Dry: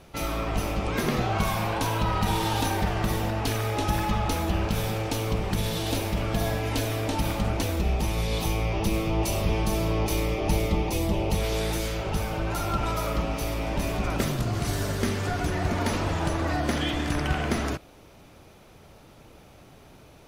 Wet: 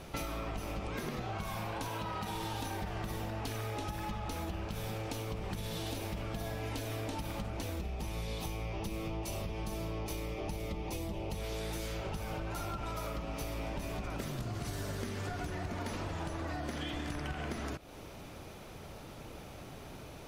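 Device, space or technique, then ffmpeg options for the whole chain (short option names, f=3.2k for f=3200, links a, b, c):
serial compression, leveller first: -filter_complex "[0:a]asettb=1/sr,asplit=3[a][b][c];[a]atrim=end=1.884[d];[b]atrim=start=1.88:end=2.36,asetpts=PTS-STARTPTS,afade=t=in:d=0.004:c=qsin,afade=t=out:st=0.476:d=0.004:c=qsin,highpass=f=140:p=1[e];[c]atrim=start=2.356[f];[d][e]acrossfade=d=0.004:c1=hsin:c2=qsin[g];[g][f]acrossfade=d=0.004:c1=qsin:c2=hsin,acompressor=threshold=-28dB:ratio=2,acompressor=threshold=-39dB:ratio=6,volume=3dB"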